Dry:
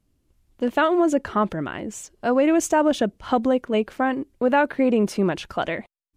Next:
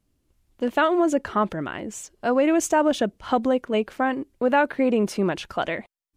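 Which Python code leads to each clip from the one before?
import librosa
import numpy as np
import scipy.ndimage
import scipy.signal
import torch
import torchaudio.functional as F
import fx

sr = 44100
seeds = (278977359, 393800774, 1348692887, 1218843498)

y = fx.low_shelf(x, sr, hz=350.0, db=-3.0)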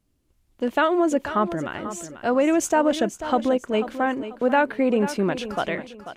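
y = fx.echo_feedback(x, sr, ms=490, feedback_pct=31, wet_db=-12.0)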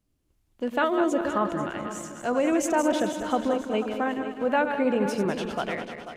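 y = fx.reverse_delay_fb(x, sr, ms=101, feedback_pct=69, wet_db=-7.5)
y = y * librosa.db_to_amplitude(-4.5)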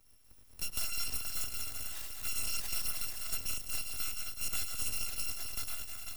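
y = fx.bit_reversed(x, sr, seeds[0], block=256)
y = np.abs(y)
y = fx.band_squash(y, sr, depth_pct=70)
y = y * librosa.db_to_amplitude(-9.0)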